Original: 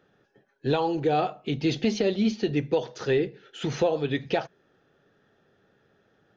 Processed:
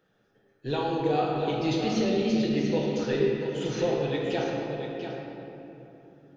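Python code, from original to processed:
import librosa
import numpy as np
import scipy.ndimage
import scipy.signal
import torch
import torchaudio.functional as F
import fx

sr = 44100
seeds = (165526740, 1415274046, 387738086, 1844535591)

y = fx.high_shelf(x, sr, hz=5400.0, db=7.5)
y = y + 10.0 ** (-8.0 / 20.0) * np.pad(y, (int(689 * sr / 1000.0), 0))[:len(y)]
y = fx.room_shoebox(y, sr, seeds[0], volume_m3=150.0, walls='hard', distance_m=0.61)
y = y * librosa.db_to_amplitude(-7.0)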